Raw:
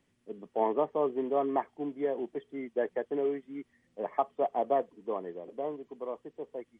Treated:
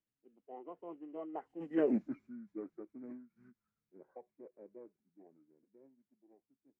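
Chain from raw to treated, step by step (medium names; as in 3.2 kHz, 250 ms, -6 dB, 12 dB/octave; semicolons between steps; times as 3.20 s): Doppler pass-by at 1.90 s, 45 m/s, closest 3.1 m; formant shift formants -4 st; trim +6 dB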